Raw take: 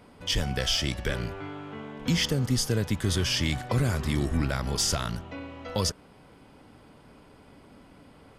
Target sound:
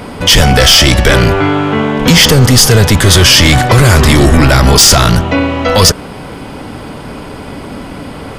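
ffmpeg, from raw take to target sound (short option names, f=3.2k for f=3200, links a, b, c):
-af "acontrast=68,apsyclip=22.5dB,volume=-1.5dB"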